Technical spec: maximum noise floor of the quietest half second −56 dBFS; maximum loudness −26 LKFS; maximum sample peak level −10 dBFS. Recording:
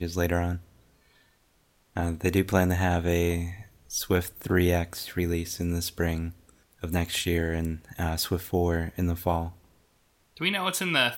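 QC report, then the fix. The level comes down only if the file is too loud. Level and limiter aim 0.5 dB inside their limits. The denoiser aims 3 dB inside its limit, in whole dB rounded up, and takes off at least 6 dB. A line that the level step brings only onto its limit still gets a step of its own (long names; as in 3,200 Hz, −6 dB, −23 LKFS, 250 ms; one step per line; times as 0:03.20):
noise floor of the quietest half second −66 dBFS: in spec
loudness −28.0 LKFS: in spec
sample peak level −8.5 dBFS: out of spec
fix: brickwall limiter −10.5 dBFS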